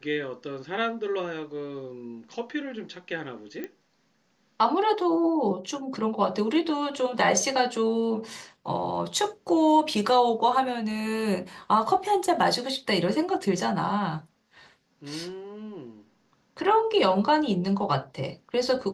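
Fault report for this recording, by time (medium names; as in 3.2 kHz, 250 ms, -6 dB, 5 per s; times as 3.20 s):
3.64 s: pop -21 dBFS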